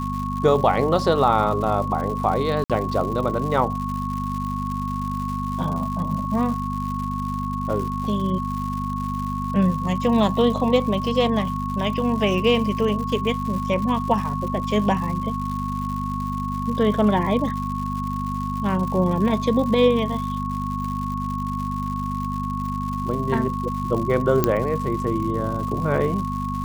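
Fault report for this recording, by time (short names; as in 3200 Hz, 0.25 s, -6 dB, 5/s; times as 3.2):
crackle 190/s -30 dBFS
hum 50 Hz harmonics 5 -28 dBFS
tone 1100 Hz -28 dBFS
2.64–2.7 gap 57 ms
24.44 pop -4 dBFS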